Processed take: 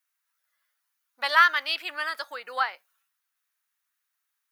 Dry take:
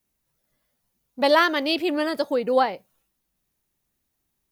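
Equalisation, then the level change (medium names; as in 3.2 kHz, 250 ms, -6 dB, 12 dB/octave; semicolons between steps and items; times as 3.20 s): resonant high-pass 1.4 kHz, resonance Q 2.5; -3.5 dB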